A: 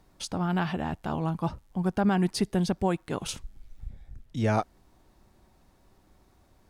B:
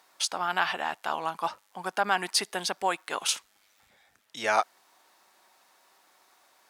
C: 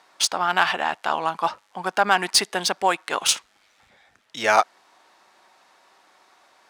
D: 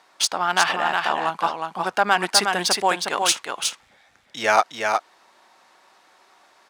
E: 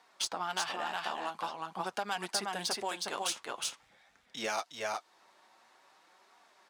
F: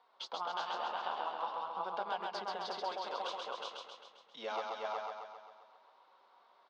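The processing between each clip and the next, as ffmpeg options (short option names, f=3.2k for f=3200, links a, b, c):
-af "highpass=950,volume=8.5dB"
-af "highshelf=f=8.4k:g=8,adynamicsmooth=sensitivity=3.5:basefreq=5.1k,volume=7dB"
-af "aecho=1:1:363:0.596"
-filter_complex "[0:a]acrossover=split=1400|2900[a][b][c];[a]acompressor=threshold=-27dB:ratio=4[d];[b]acompressor=threshold=-41dB:ratio=4[e];[c]acompressor=threshold=-25dB:ratio=4[f];[d][e][f]amix=inputs=3:normalize=0,flanger=delay=4:depth=6.4:regen=-38:speed=0.47:shape=triangular,volume=-4dB"
-filter_complex "[0:a]highpass=290,equalizer=f=320:t=q:w=4:g=-6,equalizer=f=500:t=q:w=4:g=5,equalizer=f=1k:t=q:w=4:g=5,equalizer=f=1.8k:t=q:w=4:g=-9,equalizer=f=2.5k:t=q:w=4:g=-7,lowpass=f=3.9k:w=0.5412,lowpass=f=3.9k:w=1.3066,asplit=2[a][b];[b]aecho=0:1:133|266|399|532|665|798|931|1064:0.708|0.411|0.238|0.138|0.0801|0.0465|0.027|0.0156[c];[a][c]amix=inputs=2:normalize=0,volume=-5dB"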